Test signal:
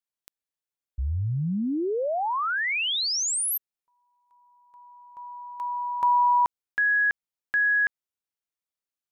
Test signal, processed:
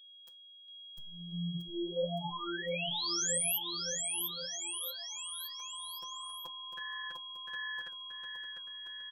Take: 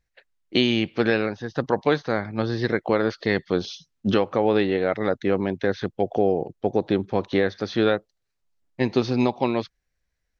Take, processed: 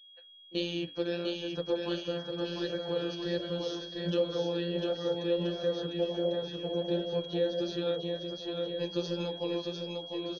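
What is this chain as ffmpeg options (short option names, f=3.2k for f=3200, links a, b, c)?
-filter_complex "[0:a]equalizer=f=100:t=o:w=0.33:g=5,equalizer=f=500:t=o:w=0.33:g=10,equalizer=f=1k:t=o:w=0.33:g=4,acrossover=split=520|2300[a][b][c];[b]acompressor=threshold=-29dB:ratio=6:attack=0.23:release=75:knee=6[d];[a][d][c]amix=inputs=3:normalize=0,afftfilt=real='hypot(re,im)*cos(PI*b)':imag='0':win_size=1024:overlap=0.75,flanger=delay=7.2:depth=7.1:regen=-68:speed=1.4:shape=sinusoidal,aeval=exprs='val(0)+0.00398*sin(2*PI*3300*n/s)':c=same,asuperstop=centerf=2100:order=4:qfactor=5.3,aecho=1:1:700|1330|1897|2407|2867:0.631|0.398|0.251|0.158|0.1,adynamicequalizer=threshold=0.00398:dfrequency=4500:dqfactor=0.7:tfrequency=4500:tqfactor=0.7:attack=5:release=100:ratio=0.45:range=3:mode=boostabove:tftype=highshelf,volume=-4.5dB"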